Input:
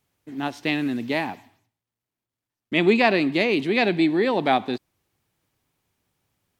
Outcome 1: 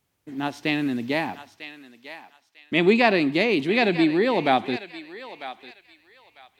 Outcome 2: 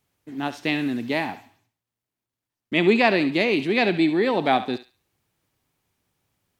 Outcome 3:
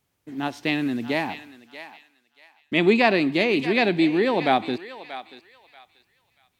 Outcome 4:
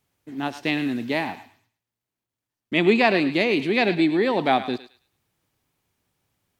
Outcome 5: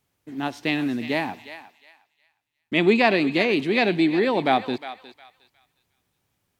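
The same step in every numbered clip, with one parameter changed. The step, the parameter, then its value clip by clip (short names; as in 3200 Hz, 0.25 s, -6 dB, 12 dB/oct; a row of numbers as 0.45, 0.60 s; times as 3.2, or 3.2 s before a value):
thinning echo, time: 948, 70, 634, 107, 359 ms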